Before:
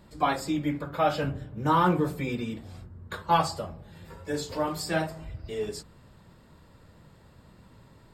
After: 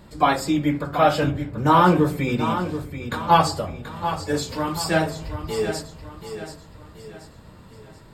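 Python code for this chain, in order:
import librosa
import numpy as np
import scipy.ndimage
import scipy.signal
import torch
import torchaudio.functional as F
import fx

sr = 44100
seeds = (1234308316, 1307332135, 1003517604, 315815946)

p1 = fx.peak_eq(x, sr, hz=610.0, db=-8.0, octaves=1.1, at=(4.38, 4.84))
p2 = p1 + fx.echo_feedback(p1, sr, ms=732, feedback_pct=42, wet_db=-10, dry=0)
y = p2 * librosa.db_to_amplitude(7.0)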